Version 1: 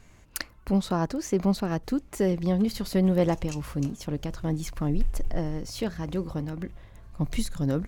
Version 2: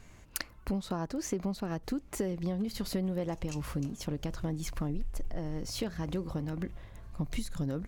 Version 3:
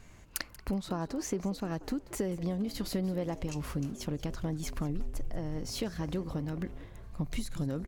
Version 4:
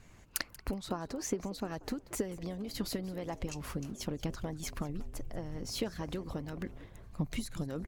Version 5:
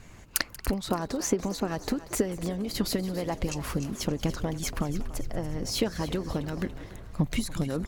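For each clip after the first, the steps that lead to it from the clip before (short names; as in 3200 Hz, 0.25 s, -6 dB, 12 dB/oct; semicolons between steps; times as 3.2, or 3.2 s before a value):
compressor 6:1, threshold -30 dBFS, peak gain reduction 12.5 dB
frequency-shifting echo 0.185 s, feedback 31%, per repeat +99 Hz, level -18 dB
harmonic-percussive split harmonic -9 dB; gain +1 dB
thinning echo 0.286 s, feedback 50%, level -14 dB; gain +8 dB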